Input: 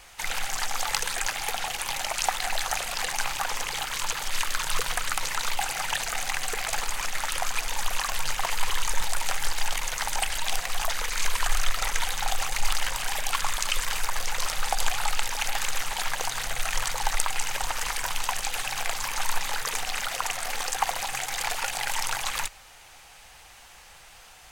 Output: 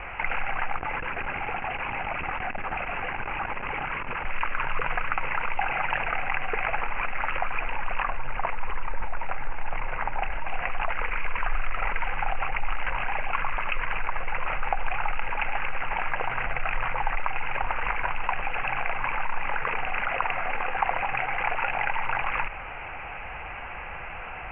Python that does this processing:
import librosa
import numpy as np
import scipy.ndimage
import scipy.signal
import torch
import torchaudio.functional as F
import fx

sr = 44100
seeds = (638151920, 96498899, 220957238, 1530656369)

y = fx.tube_stage(x, sr, drive_db=33.0, bias=0.7, at=(0.76, 4.25))
y = fx.high_shelf(y, sr, hz=2100.0, db=-10.0, at=(8.03, 10.5))
y = scipy.signal.sosfilt(scipy.signal.butter(16, 2700.0, 'lowpass', fs=sr, output='sos'), y)
y = fx.notch(y, sr, hz=1800.0, q=16.0)
y = fx.env_flatten(y, sr, amount_pct=50)
y = y * 10.0 ** (-3.5 / 20.0)